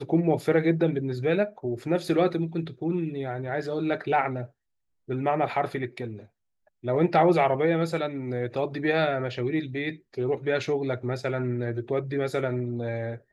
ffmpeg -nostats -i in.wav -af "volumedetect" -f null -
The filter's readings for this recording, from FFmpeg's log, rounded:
mean_volume: -26.7 dB
max_volume: -9.7 dB